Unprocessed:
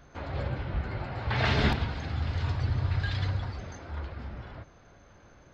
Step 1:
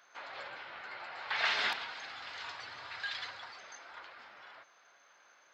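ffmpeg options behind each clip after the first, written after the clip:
-af "highpass=1.1k"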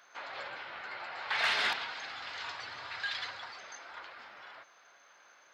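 -af "aeval=exprs='0.133*(cos(1*acos(clip(val(0)/0.133,-1,1)))-cos(1*PI/2))+0.0106*(cos(5*acos(clip(val(0)/0.133,-1,1)))-cos(5*PI/2))':c=same"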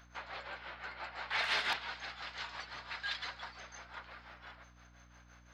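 -af "tremolo=f=5.8:d=0.69,aeval=exprs='val(0)+0.001*(sin(2*PI*60*n/s)+sin(2*PI*2*60*n/s)/2+sin(2*PI*3*60*n/s)/3+sin(2*PI*4*60*n/s)/4+sin(2*PI*5*60*n/s)/5)':c=same"

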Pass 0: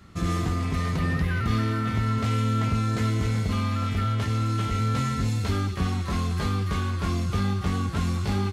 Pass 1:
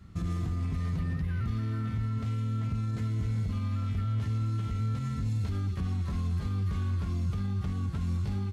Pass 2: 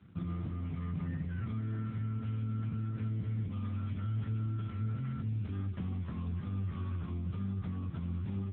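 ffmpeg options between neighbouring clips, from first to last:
-af "alimiter=limit=-23dB:level=0:latency=1:release=165,bass=f=250:g=11,treble=f=4k:g=0,volume=-9dB"
-af "volume=-2.5dB" -ar 8000 -c:a libopencore_amrnb -b:a 6700

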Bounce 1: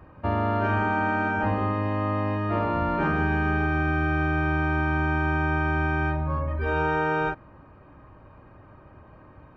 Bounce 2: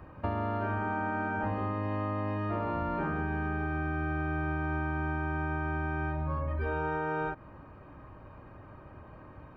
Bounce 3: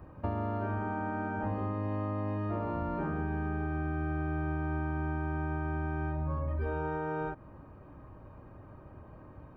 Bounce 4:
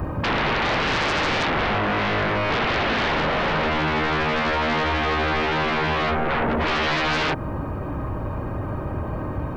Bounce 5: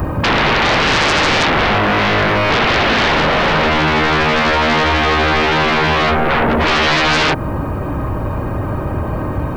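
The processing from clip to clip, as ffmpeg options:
-filter_complex "[0:a]acrossover=split=1900[a][b];[b]alimiter=level_in=15.5dB:limit=-24dB:level=0:latency=1:release=115,volume=-15.5dB[c];[a][c]amix=inputs=2:normalize=0,acompressor=threshold=-29dB:ratio=6"
-af "equalizer=f=2.6k:t=o:w=2.8:g=-7.5"
-af "aeval=exprs='0.0944*sin(PI/2*7.94*val(0)/0.0944)':c=same,volume=1.5dB"
-af "highshelf=f=5.8k:g=9,volume=8dB"

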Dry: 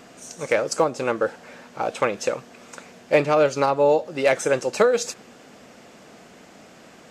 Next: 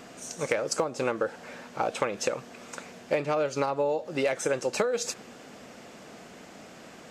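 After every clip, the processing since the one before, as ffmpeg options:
-af "acompressor=threshold=-23dB:ratio=12"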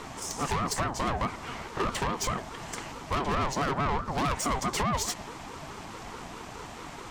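-af "equalizer=f=340:t=o:w=0.77:g=4,aeval=exprs='(tanh(39.8*val(0)+0.4)-tanh(0.4))/39.8':c=same,aeval=exprs='val(0)*sin(2*PI*560*n/s+560*0.3/4.7*sin(2*PI*4.7*n/s))':c=same,volume=9dB"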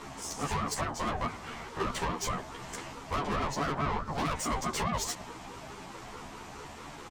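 -filter_complex "[0:a]asplit=2[a][b];[b]adelay=11.9,afreqshift=0.32[c];[a][c]amix=inputs=2:normalize=1"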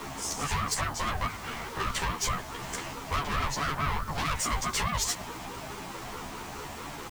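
-filter_complex "[0:a]acrossover=split=130|1100[a][b][c];[b]acompressor=threshold=-44dB:ratio=6[d];[a][d][c]amix=inputs=3:normalize=0,acrusher=bits=8:mix=0:aa=0.000001,volume=5.5dB"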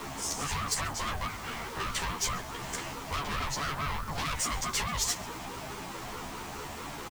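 -filter_complex "[0:a]acrossover=split=2800[a][b];[a]asoftclip=type=tanh:threshold=-29dB[c];[c][b]amix=inputs=2:normalize=0,aecho=1:1:135:0.0891"

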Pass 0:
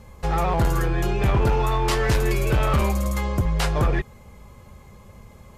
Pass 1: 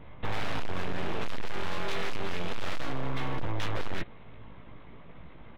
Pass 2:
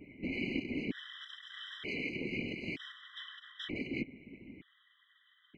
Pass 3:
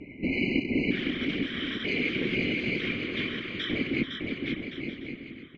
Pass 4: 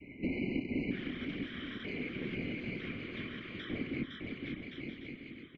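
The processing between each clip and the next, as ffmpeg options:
-filter_complex "[0:a]aresample=8000,aeval=exprs='abs(val(0))':c=same,aresample=44100,asplit=2[a][b];[b]adelay=18,volume=-6dB[c];[a][c]amix=inputs=2:normalize=0,asoftclip=type=hard:threshold=-20.5dB,volume=-2dB"
-filter_complex "[0:a]asplit=3[a][b][c];[a]bandpass=f=270:t=q:w=8,volume=0dB[d];[b]bandpass=f=2.29k:t=q:w=8,volume=-6dB[e];[c]bandpass=f=3.01k:t=q:w=8,volume=-9dB[f];[d][e][f]amix=inputs=3:normalize=0,afftfilt=real='hypot(re,im)*cos(2*PI*random(0))':imag='hypot(re,im)*sin(2*PI*random(1))':win_size=512:overlap=0.75,afftfilt=real='re*gt(sin(2*PI*0.54*pts/sr)*(1-2*mod(floor(b*sr/1024/1000),2)),0)':imag='im*gt(sin(2*PI*0.54*pts/sr)*(1-2*mod(floor(b*sr/1024/1000),2)),0)':win_size=1024:overlap=0.75,volume=18dB"
-filter_complex "[0:a]lowpass=5.2k,asplit=2[a][b];[b]aecho=0:1:510|867|1117|1292|1414:0.631|0.398|0.251|0.158|0.1[c];[a][c]amix=inputs=2:normalize=0,volume=9dB"
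-filter_complex "[0:a]adynamicequalizer=threshold=0.00891:dfrequency=390:dqfactor=0.74:tfrequency=390:tqfactor=0.74:attack=5:release=100:ratio=0.375:range=3:mode=cutabove:tftype=bell,acrossover=split=240|1600[a][b][c];[b]asplit=2[d][e];[e]adelay=28,volume=-11dB[f];[d][f]amix=inputs=2:normalize=0[g];[c]acompressor=threshold=-44dB:ratio=6[h];[a][g][h]amix=inputs=3:normalize=0,volume=-5dB"

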